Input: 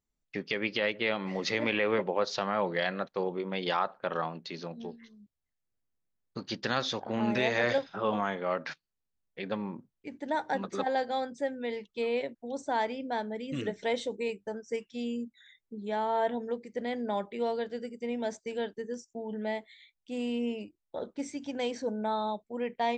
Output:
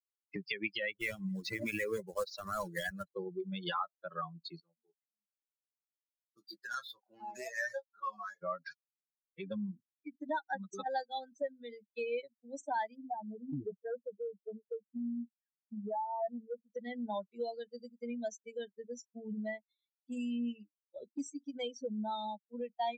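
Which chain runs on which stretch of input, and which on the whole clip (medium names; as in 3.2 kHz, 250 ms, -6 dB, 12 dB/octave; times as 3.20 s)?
0.96–3.06 s: block-companded coder 3-bit + treble shelf 4.4 kHz -8 dB
4.60–8.43 s: median filter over 15 samples + high-pass 1.2 kHz 6 dB/octave + doubling 24 ms -5.5 dB
12.95–16.73 s: spectral contrast enhancement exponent 1.8 + overload inside the chain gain 28 dB + brick-wall FIR low-pass 1.9 kHz
whole clip: expander on every frequency bin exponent 3; dynamic bell 350 Hz, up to -6 dB, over -52 dBFS, Q 1.2; three bands compressed up and down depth 70%; trim +4 dB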